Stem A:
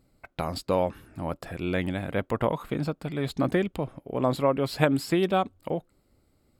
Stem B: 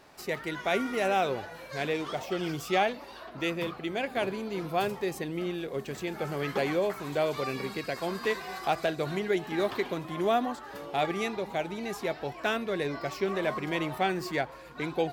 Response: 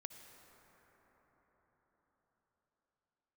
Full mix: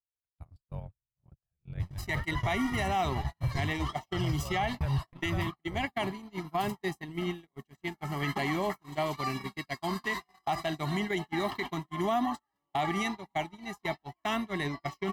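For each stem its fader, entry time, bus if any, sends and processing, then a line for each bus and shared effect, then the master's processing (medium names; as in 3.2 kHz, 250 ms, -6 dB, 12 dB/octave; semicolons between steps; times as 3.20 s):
-3.5 dB, 0.00 s, send -21.5 dB, echo send -21 dB, octave divider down 1 oct, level +3 dB; FFT filter 140 Hz 0 dB, 250 Hz -23 dB, 670 Hz -13 dB
+1.0 dB, 1.80 s, send -20 dB, no echo send, comb 1 ms, depth 98%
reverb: on, RT60 5.6 s, pre-delay 53 ms
echo: delay 460 ms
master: gate -29 dBFS, range -45 dB; peak limiter -21.5 dBFS, peak gain reduction 10.5 dB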